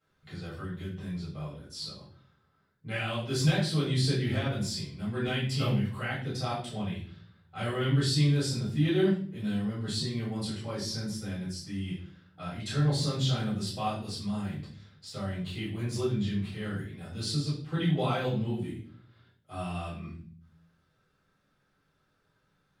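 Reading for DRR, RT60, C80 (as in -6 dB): -10.0 dB, 0.45 s, 9.5 dB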